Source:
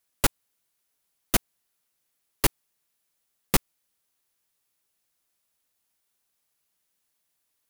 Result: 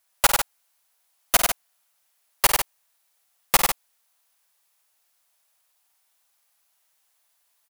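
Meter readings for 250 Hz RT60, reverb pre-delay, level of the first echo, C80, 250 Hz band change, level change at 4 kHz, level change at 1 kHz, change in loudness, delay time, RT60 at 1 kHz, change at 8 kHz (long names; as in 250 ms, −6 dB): no reverb audible, no reverb audible, −9.5 dB, no reverb audible, −7.5 dB, +7.5 dB, +9.5 dB, +5.0 dB, 51 ms, no reverb audible, +7.5 dB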